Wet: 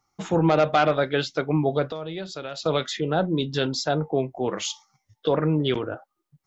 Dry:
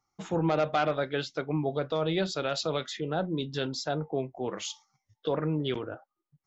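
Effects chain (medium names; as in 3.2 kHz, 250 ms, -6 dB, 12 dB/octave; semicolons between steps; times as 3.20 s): 1.88–2.66 s: compression 3:1, threshold -41 dBFS, peak gain reduction 12.5 dB; trim +7 dB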